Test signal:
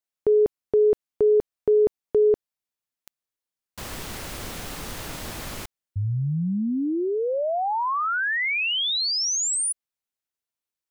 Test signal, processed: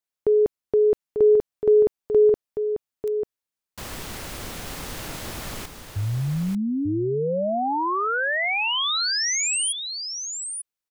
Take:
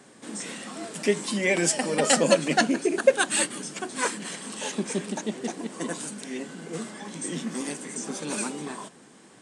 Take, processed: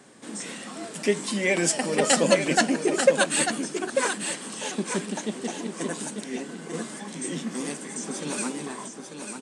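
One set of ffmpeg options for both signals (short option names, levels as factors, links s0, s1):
-af "aecho=1:1:893:0.447"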